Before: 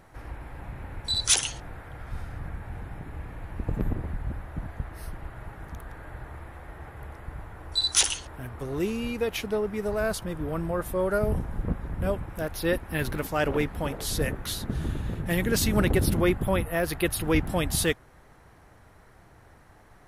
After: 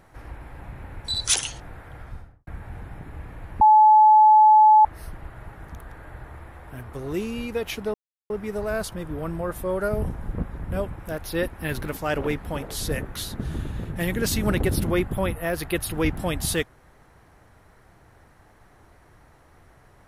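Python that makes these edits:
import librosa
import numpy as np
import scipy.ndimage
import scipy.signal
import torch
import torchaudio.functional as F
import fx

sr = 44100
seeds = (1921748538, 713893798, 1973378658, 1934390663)

y = fx.studio_fade_out(x, sr, start_s=1.97, length_s=0.5)
y = fx.edit(y, sr, fx.bleep(start_s=3.61, length_s=1.24, hz=860.0, db=-10.0),
    fx.cut(start_s=6.67, length_s=1.66),
    fx.insert_silence(at_s=9.6, length_s=0.36), tone=tone)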